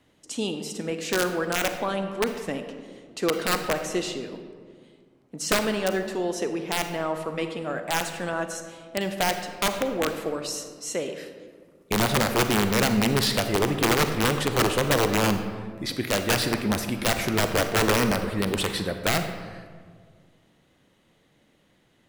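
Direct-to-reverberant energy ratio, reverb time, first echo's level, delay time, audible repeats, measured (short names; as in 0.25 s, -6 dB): 7.0 dB, 1.8 s, none, none, none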